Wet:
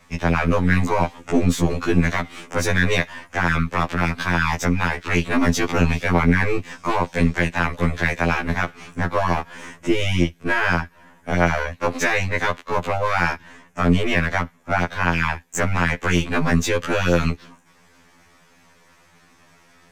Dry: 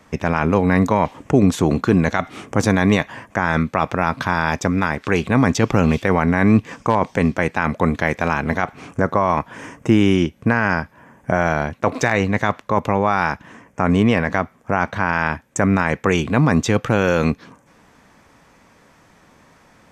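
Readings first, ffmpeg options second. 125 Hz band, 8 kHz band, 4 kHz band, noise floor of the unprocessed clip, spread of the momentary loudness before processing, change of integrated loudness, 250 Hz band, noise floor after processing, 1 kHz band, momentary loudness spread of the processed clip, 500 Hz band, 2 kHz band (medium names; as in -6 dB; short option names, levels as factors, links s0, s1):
-2.0 dB, +1.0 dB, +2.5 dB, -53 dBFS, 7 LU, -2.5 dB, -4.5 dB, -55 dBFS, -3.0 dB, 6 LU, -4.0 dB, +0.5 dB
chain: -filter_complex "[0:a]aeval=exprs='if(lt(val(0),0),0.447*val(0),val(0))':c=same,acrossover=split=150|470|1600[s0][s1][s2][s3];[s3]acontrast=49[s4];[s0][s1][s2][s4]amix=inputs=4:normalize=0,afftfilt=real='re*2*eq(mod(b,4),0)':imag='im*2*eq(mod(b,4),0)':win_size=2048:overlap=0.75"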